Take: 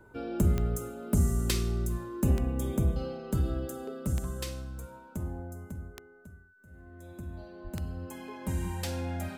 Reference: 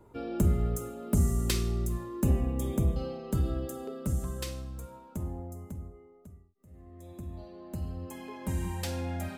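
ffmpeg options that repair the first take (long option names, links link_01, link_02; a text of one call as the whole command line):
ffmpeg -i in.wav -filter_complex "[0:a]adeclick=threshold=4,bandreject=frequency=1500:width=30,asplit=3[link_01][link_02][link_03];[link_01]afade=type=out:start_time=7.63:duration=0.02[link_04];[link_02]highpass=frequency=140:width=0.5412,highpass=frequency=140:width=1.3066,afade=type=in:start_time=7.63:duration=0.02,afade=type=out:start_time=7.75:duration=0.02[link_05];[link_03]afade=type=in:start_time=7.75:duration=0.02[link_06];[link_04][link_05][link_06]amix=inputs=3:normalize=0" out.wav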